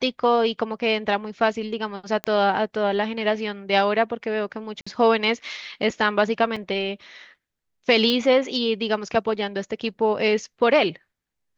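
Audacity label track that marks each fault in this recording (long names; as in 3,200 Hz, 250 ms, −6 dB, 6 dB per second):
2.240000	2.240000	click −12 dBFS
4.810000	4.870000	drop-out 55 ms
6.560000	6.560000	drop-out 4.7 ms
8.100000	8.100000	click −11 dBFS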